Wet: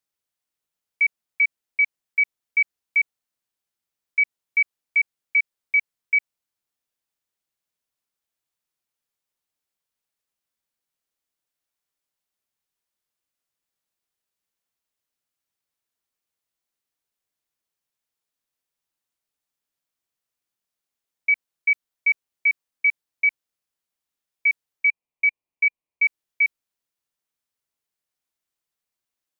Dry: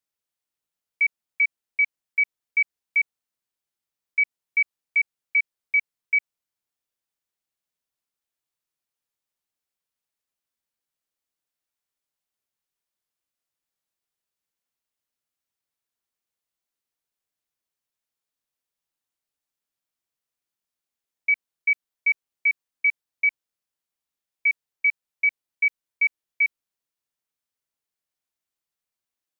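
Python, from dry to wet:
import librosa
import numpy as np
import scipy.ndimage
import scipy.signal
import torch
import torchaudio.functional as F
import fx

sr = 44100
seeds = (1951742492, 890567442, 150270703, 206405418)

y = fx.curve_eq(x, sr, hz=(1100.0, 1500.0, 2400.0, 3400.0), db=(0, -16, 2, -11), at=(24.86, 26.03), fade=0.02)
y = F.gain(torch.from_numpy(y), 1.5).numpy()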